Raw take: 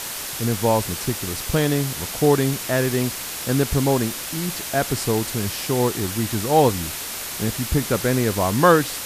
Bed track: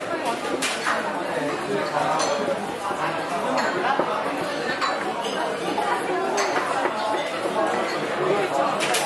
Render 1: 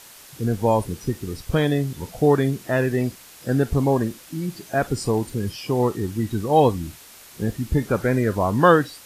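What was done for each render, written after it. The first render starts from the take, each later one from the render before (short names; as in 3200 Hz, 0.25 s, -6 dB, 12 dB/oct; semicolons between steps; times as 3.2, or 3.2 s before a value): noise print and reduce 15 dB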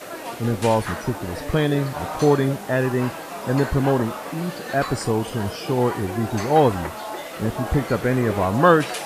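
add bed track -7.5 dB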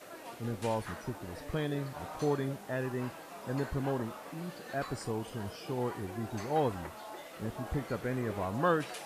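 gain -14 dB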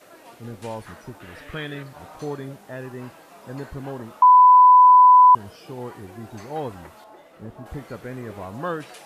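1.2–1.83 band shelf 2100 Hz +9.5 dB; 4.22–5.35 bleep 999 Hz -7.5 dBFS; 7.04–7.66 high shelf 2000 Hz -10.5 dB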